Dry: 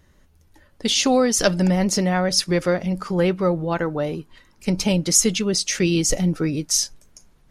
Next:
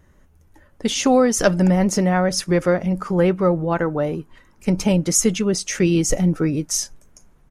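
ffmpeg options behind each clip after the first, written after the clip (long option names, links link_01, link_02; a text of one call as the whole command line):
ffmpeg -i in.wav -af "firequalizer=gain_entry='entry(1300,0);entry(4300,-11);entry(6300,-4)':delay=0.05:min_phase=1,volume=2.5dB" out.wav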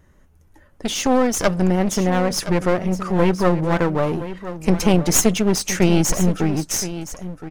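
ffmpeg -i in.wav -af "dynaudnorm=framelen=350:gausssize=9:maxgain=11.5dB,aeval=exprs='clip(val(0),-1,0.0631)':channel_layout=same,aecho=1:1:1019:0.224" out.wav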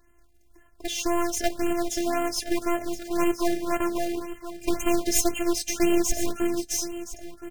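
ffmpeg -i in.wav -af "acrusher=bits=3:mode=log:mix=0:aa=0.000001,afftfilt=real='hypot(re,im)*cos(PI*b)':imag='0':win_size=512:overlap=0.75,afftfilt=real='re*(1-between(b*sr/1024,990*pow(4800/990,0.5+0.5*sin(2*PI*1.9*pts/sr))/1.41,990*pow(4800/990,0.5+0.5*sin(2*PI*1.9*pts/sr))*1.41))':imag='im*(1-between(b*sr/1024,990*pow(4800/990,0.5+0.5*sin(2*PI*1.9*pts/sr))/1.41,990*pow(4800/990,0.5+0.5*sin(2*PI*1.9*pts/sr))*1.41))':win_size=1024:overlap=0.75,volume=-2.5dB" out.wav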